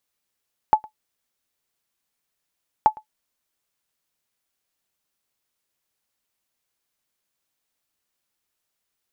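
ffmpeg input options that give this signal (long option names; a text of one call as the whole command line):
ffmpeg -f lavfi -i "aevalsrc='0.562*(sin(2*PI*862*mod(t,2.13))*exp(-6.91*mod(t,2.13)/0.1)+0.0596*sin(2*PI*862*max(mod(t,2.13)-0.11,0))*exp(-6.91*max(mod(t,2.13)-0.11,0)/0.1))':duration=4.26:sample_rate=44100" out.wav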